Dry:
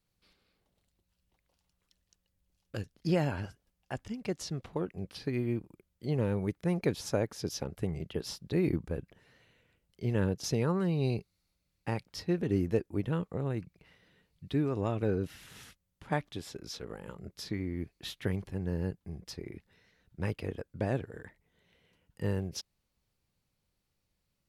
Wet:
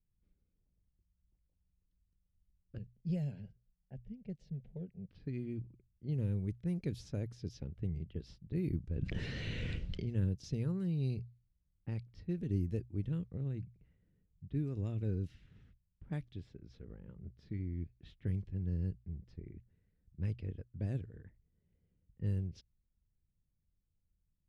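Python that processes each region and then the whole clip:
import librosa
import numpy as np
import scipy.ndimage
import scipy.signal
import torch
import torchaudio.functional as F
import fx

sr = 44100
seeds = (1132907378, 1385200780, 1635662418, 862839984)

y = fx.chain(x, sr, fx.high_shelf(hz=2700.0, db=-7.5),
    fx.fixed_phaser(hz=310.0, stages=6), at=(2.78, 5.11))
y = fx.chain(y, sr, fx.lowpass(hz=4500.0, slope=12),
    fx.low_shelf(hz=130.0, db=-5.5),
    fx.env_flatten(amount_pct=100), at=(8.96, 10.07))
y = fx.hum_notches(y, sr, base_hz=60, count=2)
y = fx.env_lowpass(y, sr, base_hz=1100.0, full_db=-25.5)
y = fx.tone_stack(y, sr, knobs='10-0-1')
y = y * librosa.db_to_amplitude(10.5)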